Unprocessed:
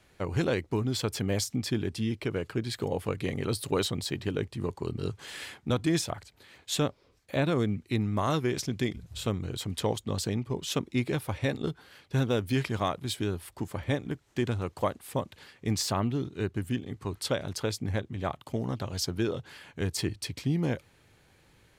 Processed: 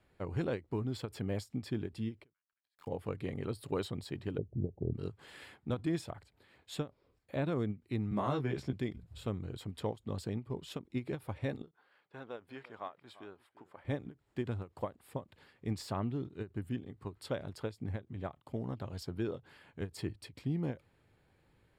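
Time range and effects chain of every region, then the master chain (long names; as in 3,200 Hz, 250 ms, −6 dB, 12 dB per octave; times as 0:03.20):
0:02.33–0:02.87: Butterworth high-pass 910 Hz 72 dB per octave + centre clipping without the shift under −45 dBFS
0:04.38–0:04.94: Butterworth low-pass 740 Hz 72 dB per octave + low-shelf EQ 220 Hz +10 dB
0:08.11–0:08.73: high-shelf EQ 7,800 Hz −9 dB + double-tracking delay 15 ms −2 dB + multiband upward and downward compressor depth 40%
0:11.71–0:13.85: high-pass filter 1,000 Hz + spectral tilt −4.5 dB per octave + single-tap delay 344 ms −17.5 dB
whole clip: high-shelf EQ 2,300 Hz −10 dB; notch filter 6,100 Hz, Q 5.3; every ending faded ahead of time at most 310 dB per second; level −6.5 dB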